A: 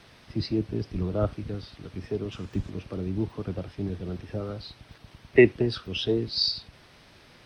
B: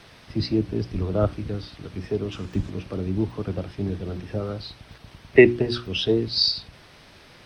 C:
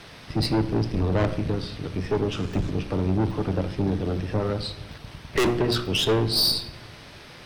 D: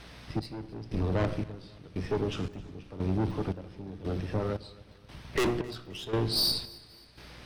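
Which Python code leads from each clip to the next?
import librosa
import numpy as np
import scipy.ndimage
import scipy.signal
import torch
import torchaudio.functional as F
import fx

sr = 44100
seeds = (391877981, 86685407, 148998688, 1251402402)

y1 = fx.hum_notches(x, sr, base_hz=60, count=6)
y1 = y1 * 10.0 ** (4.5 / 20.0)
y2 = fx.tube_stage(y1, sr, drive_db=26.0, bias=0.6)
y2 = fx.room_shoebox(y2, sr, seeds[0], volume_m3=480.0, walls='mixed', distance_m=0.37)
y2 = y2 * 10.0 ** (7.5 / 20.0)
y3 = fx.add_hum(y2, sr, base_hz=60, snr_db=22)
y3 = fx.step_gate(y3, sr, bpm=115, pattern='xxx....x', floor_db=-12.0, edge_ms=4.5)
y3 = fx.echo_feedback(y3, sr, ms=265, feedback_pct=45, wet_db=-22)
y3 = y3 * 10.0 ** (-5.5 / 20.0)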